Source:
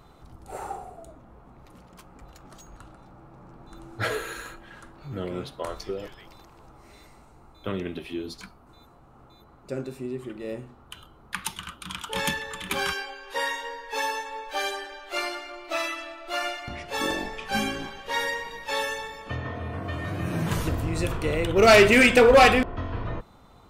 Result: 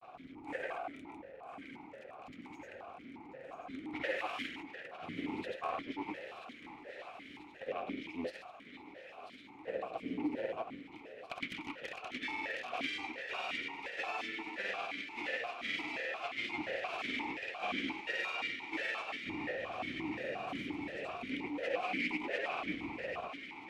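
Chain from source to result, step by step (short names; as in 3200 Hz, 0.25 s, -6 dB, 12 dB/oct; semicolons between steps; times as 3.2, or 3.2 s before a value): octaver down 2 oct, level +3 dB; full-wave rectifier; reverse; compressor 16:1, threshold -32 dBFS, peak gain reduction 22 dB; reverse; grains, pitch spread up and down by 0 st; bell 2100 Hz +5 dB 0.58 oct; thinning echo 0.988 s, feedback 79%, high-pass 570 Hz, level -10 dB; vowel sequencer 5.7 Hz; gain +14 dB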